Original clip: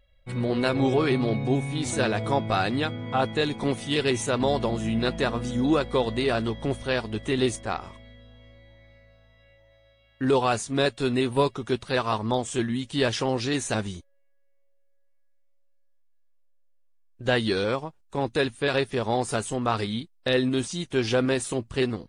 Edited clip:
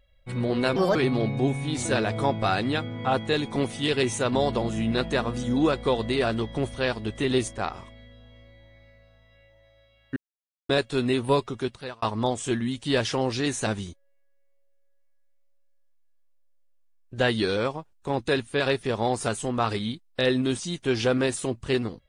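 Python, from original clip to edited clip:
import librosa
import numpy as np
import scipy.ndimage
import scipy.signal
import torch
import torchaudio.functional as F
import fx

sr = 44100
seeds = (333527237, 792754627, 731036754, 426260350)

y = fx.edit(x, sr, fx.speed_span(start_s=0.76, length_s=0.27, speed=1.4),
    fx.silence(start_s=10.24, length_s=0.53),
    fx.fade_out_span(start_s=11.58, length_s=0.52), tone=tone)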